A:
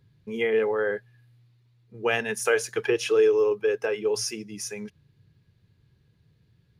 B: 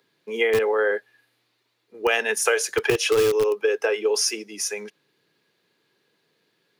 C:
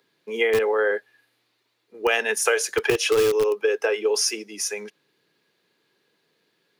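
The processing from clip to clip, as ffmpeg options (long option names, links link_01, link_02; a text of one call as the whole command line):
ffmpeg -i in.wav -filter_complex "[0:a]acrossover=split=300|990[link_01][link_02][link_03];[link_01]acrusher=bits=4:mix=0:aa=0.000001[link_04];[link_04][link_02][link_03]amix=inputs=3:normalize=0,acrossover=split=140|3000[link_05][link_06][link_07];[link_06]acompressor=threshold=-25dB:ratio=6[link_08];[link_05][link_08][link_07]amix=inputs=3:normalize=0,volume=7.5dB" out.wav
ffmpeg -i in.wav -af "equalizer=frequency=120:width=1.8:gain=-3" out.wav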